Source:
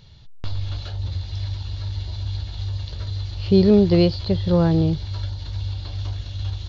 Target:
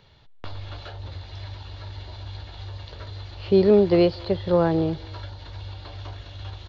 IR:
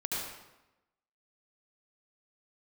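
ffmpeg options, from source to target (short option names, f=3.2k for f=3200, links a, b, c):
-filter_complex "[0:a]acrossover=split=310 2700:gain=0.224 1 0.224[a][b][c];[a][b][c]amix=inputs=3:normalize=0,asplit=2[d][e];[e]adelay=250,highpass=300,lowpass=3.4k,asoftclip=type=hard:threshold=-18.5dB,volume=-23dB[f];[d][f]amix=inputs=2:normalize=0,volume=3dB"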